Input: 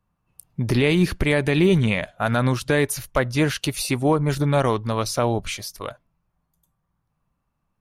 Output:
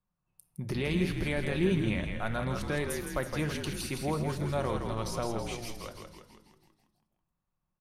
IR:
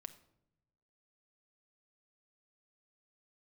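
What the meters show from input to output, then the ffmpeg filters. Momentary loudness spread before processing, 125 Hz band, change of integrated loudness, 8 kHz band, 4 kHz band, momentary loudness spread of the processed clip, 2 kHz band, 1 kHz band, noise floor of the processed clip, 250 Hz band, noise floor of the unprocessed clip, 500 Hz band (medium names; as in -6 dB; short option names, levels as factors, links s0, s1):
12 LU, -11.0 dB, -11.0 dB, -11.0 dB, -11.0 dB, 13 LU, -11.0 dB, -11.0 dB, -84 dBFS, -10.5 dB, -75 dBFS, -11.0 dB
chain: -filter_complex "[0:a]asplit=9[s0][s1][s2][s3][s4][s5][s6][s7][s8];[s1]adelay=163,afreqshift=-55,volume=0.531[s9];[s2]adelay=326,afreqshift=-110,volume=0.302[s10];[s3]adelay=489,afreqshift=-165,volume=0.172[s11];[s4]adelay=652,afreqshift=-220,volume=0.0989[s12];[s5]adelay=815,afreqshift=-275,volume=0.0562[s13];[s6]adelay=978,afreqshift=-330,volume=0.032[s14];[s7]adelay=1141,afreqshift=-385,volume=0.0182[s15];[s8]adelay=1304,afreqshift=-440,volume=0.0104[s16];[s0][s9][s10][s11][s12][s13][s14][s15][s16]amix=inputs=9:normalize=0[s17];[1:a]atrim=start_sample=2205[s18];[s17][s18]afir=irnorm=-1:irlink=0,volume=0.447"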